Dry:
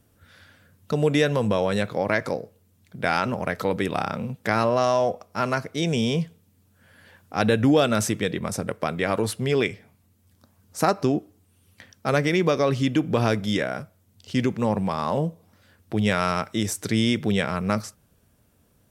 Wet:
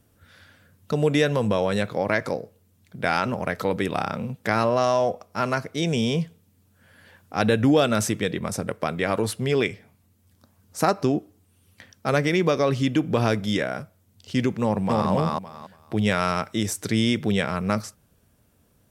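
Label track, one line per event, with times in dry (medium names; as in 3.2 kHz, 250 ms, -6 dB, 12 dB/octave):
14.610000	15.100000	echo throw 280 ms, feedback 20%, level -0.5 dB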